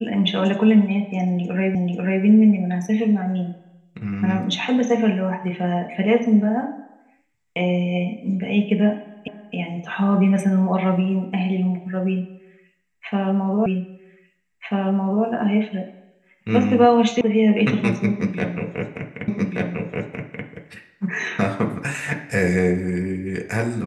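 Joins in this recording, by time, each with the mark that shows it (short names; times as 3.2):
1.75 repeat of the last 0.49 s
9.28 repeat of the last 0.27 s
13.66 repeat of the last 1.59 s
17.21 sound cut off
19.28 repeat of the last 1.18 s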